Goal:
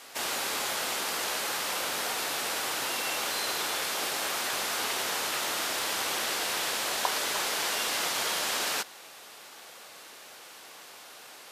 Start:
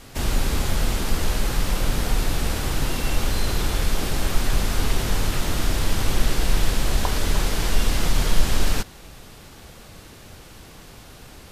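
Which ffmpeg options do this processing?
ffmpeg -i in.wav -af "highpass=620" out.wav

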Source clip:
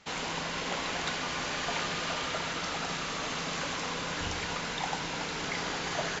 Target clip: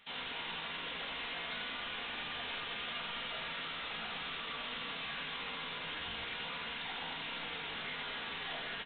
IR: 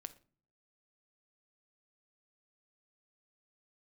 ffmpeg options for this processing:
-filter_complex "[0:a]flanger=delay=7.7:depth=1.7:regen=89:speed=0.86:shape=sinusoidal,crystalizer=i=9:c=0,aresample=8000,asoftclip=type=hard:threshold=-33.5dB,aresample=44100,atempo=0.7,asplit=2[link_01][link_02];[link_02]adelay=32,volume=-13.5dB[link_03];[link_01][link_03]amix=inputs=2:normalize=0,aecho=1:1:82:0.501[link_04];[1:a]atrim=start_sample=2205,asetrate=66150,aresample=44100[link_05];[link_04][link_05]afir=irnorm=-1:irlink=0,volume=2dB"

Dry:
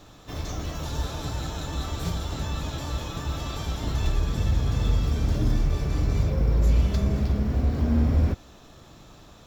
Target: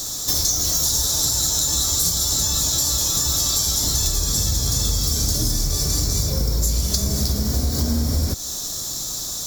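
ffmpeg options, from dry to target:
ffmpeg -i in.wav -af "aexciter=amount=12.6:drive=8:freq=4200,acompressor=threshold=-26dB:ratio=6,volume=8.5dB" out.wav

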